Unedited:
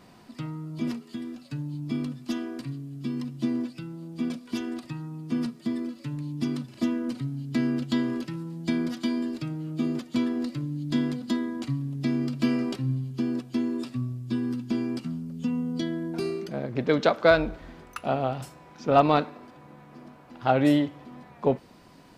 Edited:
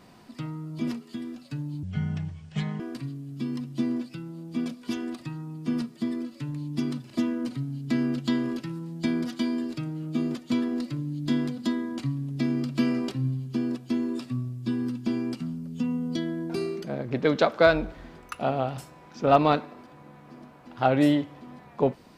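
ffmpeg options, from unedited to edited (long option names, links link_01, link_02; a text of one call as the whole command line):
ffmpeg -i in.wav -filter_complex "[0:a]asplit=3[link_01][link_02][link_03];[link_01]atrim=end=1.834[link_04];[link_02]atrim=start=1.83:end=2.44,asetpts=PTS-STARTPTS,asetrate=27783,aresample=44100[link_05];[link_03]atrim=start=2.436[link_06];[link_04][link_05]acrossfade=duration=0.004:curve1=hsin:curve2=hsin[link_07];[link_07][link_06]acrossfade=duration=0.004:curve1=hsin:curve2=hsin" out.wav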